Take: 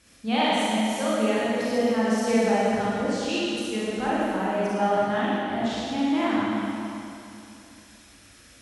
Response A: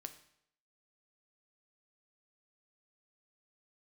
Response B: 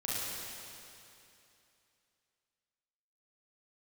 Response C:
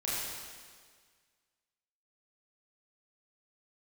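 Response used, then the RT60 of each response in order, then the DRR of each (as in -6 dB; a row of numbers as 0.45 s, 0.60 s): B; 0.70 s, 2.8 s, 1.7 s; 7.5 dB, -8.5 dB, -8.5 dB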